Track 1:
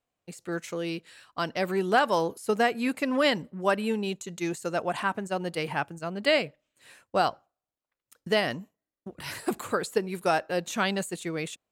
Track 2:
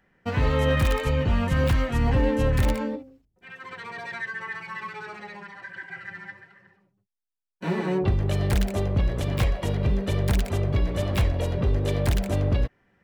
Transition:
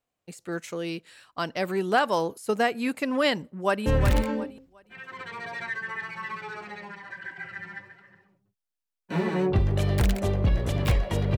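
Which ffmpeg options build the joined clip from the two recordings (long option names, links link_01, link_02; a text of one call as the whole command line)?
ffmpeg -i cue0.wav -i cue1.wav -filter_complex "[0:a]apad=whole_dur=11.37,atrim=end=11.37,atrim=end=3.862[link_01];[1:a]atrim=start=2.378:end=9.89[link_02];[link_01][link_02]acrossfade=duration=0.004:curve1=hsin:curve2=hsin,asplit=2[link_03][link_04];[link_04]afade=type=in:start_time=3.58:duration=0.01,afade=type=out:start_time=3.86:duration=0.01,aecho=0:1:360|720|1080:0.446684|0.111671|0.0279177[link_05];[link_03][link_05]amix=inputs=2:normalize=0" out.wav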